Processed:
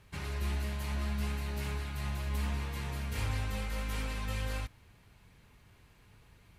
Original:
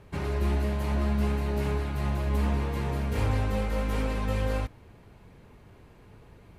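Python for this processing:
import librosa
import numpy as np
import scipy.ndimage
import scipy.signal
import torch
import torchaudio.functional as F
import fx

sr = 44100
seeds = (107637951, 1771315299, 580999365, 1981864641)

y = fx.tone_stack(x, sr, knobs='5-5-5')
y = F.gain(torch.from_numpy(y), 7.0).numpy()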